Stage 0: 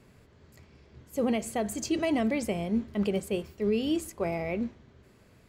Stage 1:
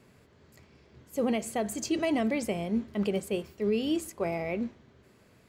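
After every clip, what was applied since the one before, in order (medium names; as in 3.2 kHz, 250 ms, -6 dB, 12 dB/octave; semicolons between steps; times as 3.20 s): bass shelf 70 Hz -11.5 dB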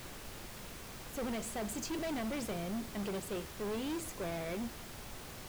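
saturation -32.5 dBFS, distortion -8 dB; added noise pink -45 dBFS; trim -2.5 dB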